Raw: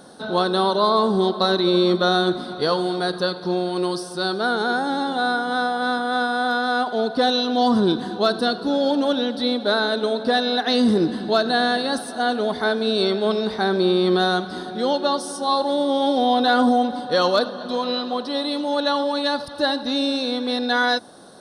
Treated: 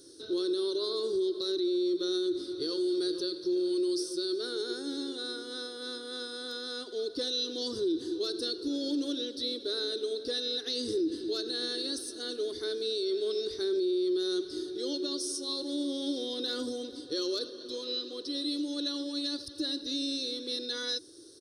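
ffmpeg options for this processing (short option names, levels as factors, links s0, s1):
-filter_complex "[0:a]asplit=2[s0][s1];[s1]afade=t=in:st=2.15:d=0.01,afade=t=out:st=2.85:d=0.01,aecho=0:1:460|920|1380|1840|2300|2760|3220|3680:0.211349|0.137377|0.0892949|0.0580417|0.0377271|0.0245226|0.0159397|0.0103608[s2];[s0][s2]amix=inputs=2:normalize=0,firequalizer=gain_entry='entry(110,0);entry(200,-27);entry(320,10);entry(740,-29);entry(1200,-16);entry(5300,10);entry(8000,4)':delay=0.05:min_phase=1,alimiter=limit=0.158:level=0:latency=1:release=67,volume=0.422"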